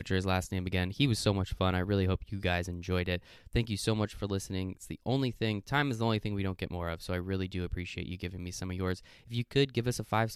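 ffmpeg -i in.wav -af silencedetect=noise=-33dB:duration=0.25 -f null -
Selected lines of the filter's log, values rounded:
silence_start: 3.18
silence_end: 3.55 | silence_duration: 0.38
silence_start: 8.94
silence_end: 9.33 | silence_duration: 0.39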